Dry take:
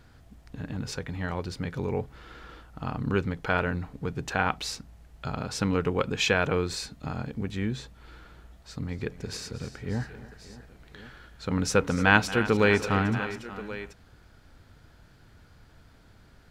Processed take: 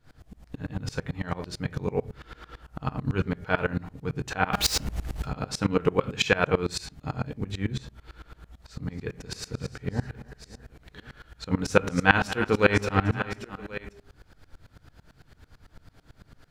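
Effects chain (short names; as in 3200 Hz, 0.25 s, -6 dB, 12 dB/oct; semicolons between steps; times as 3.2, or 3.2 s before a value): de-hum 202.2 Hz, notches 16; 4.53–5.25 sample leveller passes 5; reverb RT60 0.35 s, pre-delay 7 ms, DRR 9.5 dB; dB-ramp tremolo swelling 9 Hz, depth 24 dB; gain +7 dB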